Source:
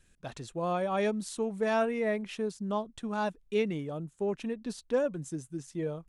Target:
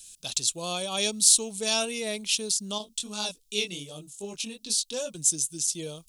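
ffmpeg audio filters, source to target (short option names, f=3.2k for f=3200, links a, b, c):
-filter_complex "[0:a]aexciter=amount=10.2:drive=9.4:freq=2.9k,asettb=1/sr,asplit=3[a][b][c];[a]atrim=end=2.784[d];[b]atrim=start=2.78:end=5.15,asetpts=PTS-STARTPTS,afade=t=in:d=0.004:c=qsin,afade=t=out:st=2.366:d=0.004:c=qsin,flanger=delay=18.5:depth=4.3:speed=2.6[e];[c]atrim=start=5.146[f];[d][e]acrossfade=d=0.004:c1=hsin:c2=qsin[g];[g][f]acrossfade=d=0.004:c1=qsin:c2=hsin,volume=-3.5dB"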